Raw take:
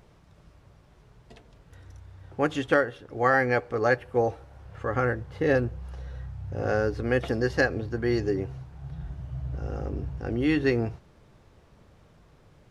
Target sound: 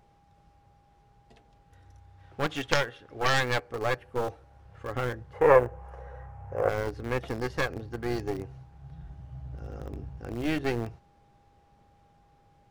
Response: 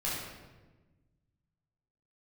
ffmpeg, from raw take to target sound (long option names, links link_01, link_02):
-filter_complex "[0:a]aeval=exprs='val(0)+0.00158*sin(2*PI*810*n/s)':channel_layout=same,asplit=3[link_01][link_02][link_03];[link_01]afade=type=out:start_time=2.18:duration=0.02[link_04];[link_02]equalizer=frequency=2500:width=0.49:gain=7,afade=type=in:start_time=2.18:duration=0.02,afade=type=out:start_time=3.59:duration=0.02[link_05];[link_03]afade=type=in:start_time=3.59:duration=0.02[link_06];[link_04][link_05][link_06]amix=inputs=3:normalize=0,asplit=2[link_07][link_08];[link_08]aeval=exprs='val(0)*gte(abs(val(0)),0.0708)':channel_layout=same,volume=-8.5dB[link_09];[link_07][link_09]amix=inputs=2:normalize=0,aeval=exprs='0.891*(cos(1*acos(clip(val(0)/0.891,-1,1)))-cos(1*PI/2))+0.447*(cos(3*acos(clip(val(0)/0.891,-1,1)))-cos(3*PI/2))+0.2*(cos(5*acos(clip(val(0)/0.891,-1,1)))-cos(5*PI/2))+0.0794*(cos(6*acos(clip(val(0)/0.891,-1,1)))-cos(6*PI/2))':channel_layout=same,asettb=1/sr,asplit=3[link_10][link_11][link_12];[link_10]atrim=end=5.334[link_13];[link_11]atrim=start=5.33:end=6.69,asetpts=PTS-STARTPTS,afade=type=in:duration=0.004:curve=qsin,afade=type=out:start_time=1.356:duration=0.004:curve=qsin,equalizer=frequency=250:width_type=o:width=1:gain=-7,equalizer=frequency=500:width_type=o:width=1:gain=12,equalizer=frequency=1000:width_type=o:width=1:gain=10,equalizer=frequency=2000:width_type=o:width=1:gain=6,equalizer=frequency=4000:width_type=o:width=1:gain=-11[link_14];[link_12]atrim=start=6.686[link_15];[link_13][link_14]acrossfade=duration=0.004:curve1=hsin:curve2=qsin[link_16];[link_16][link_15]acrossfade=duration=0.004:curve1=qsin:curve2=hsin,volume=-3dB"